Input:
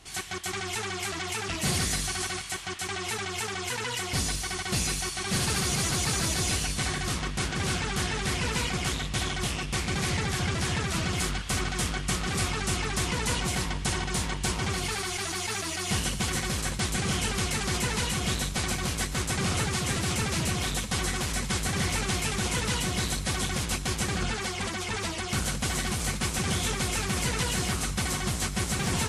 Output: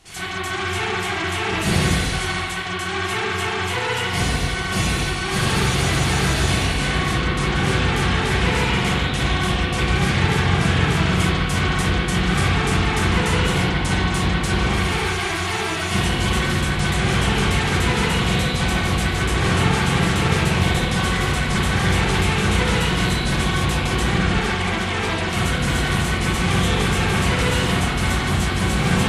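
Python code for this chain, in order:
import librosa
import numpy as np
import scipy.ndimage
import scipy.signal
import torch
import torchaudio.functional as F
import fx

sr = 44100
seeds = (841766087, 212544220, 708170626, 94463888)

y = fx.rev_spring(x, sr, rt60_s=1.3, pass_ms=(34, 44, 50), chirp_ms=25, drr_db=-10.0)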